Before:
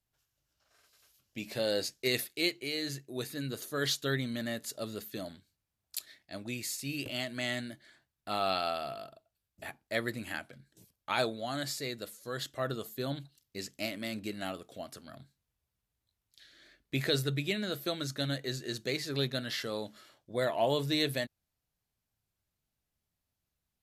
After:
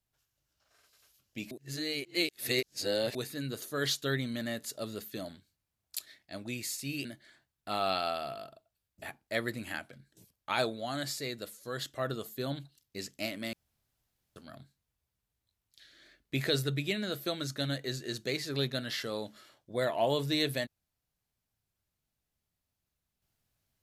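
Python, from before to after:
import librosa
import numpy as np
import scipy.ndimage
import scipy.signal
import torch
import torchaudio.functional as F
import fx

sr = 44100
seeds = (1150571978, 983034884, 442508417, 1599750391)

y = fx.edit(x, sr, fx.reverse_span(start_s=1.51, length_s=1.64),
    fx.cut(start_s=7.05, length_s=0.6),
    fx.room_tone_fill(start_s=14.13, length_s=0.83), tone=tone)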